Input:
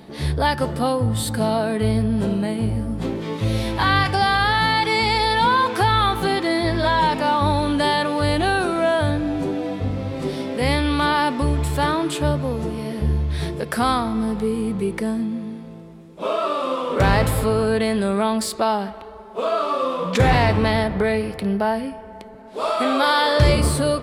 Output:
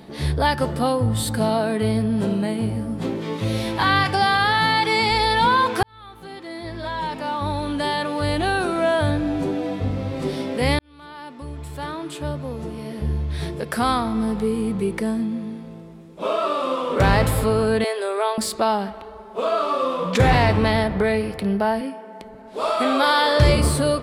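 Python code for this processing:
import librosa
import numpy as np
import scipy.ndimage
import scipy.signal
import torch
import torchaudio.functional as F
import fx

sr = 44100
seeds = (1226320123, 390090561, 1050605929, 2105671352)

y = fx.highpass(x, sr, hz=110.0, slope=12, at=(1.49, 5.11))
y = fx.ellip_highpass(y, sr, hz=390.0, order=4, stop_db=40, at=(17.84, 18.38))
y = fx.highpass(y, sr, hz=190.0, slope=24, at=(21.81, 22.21))
y = fx.edit(y, sr, fx.fade_in_span(start_s=5.83, length_s=3.31),
    fx.fade_in_span(start_s=10.79, length_s=3.45), tone=tone)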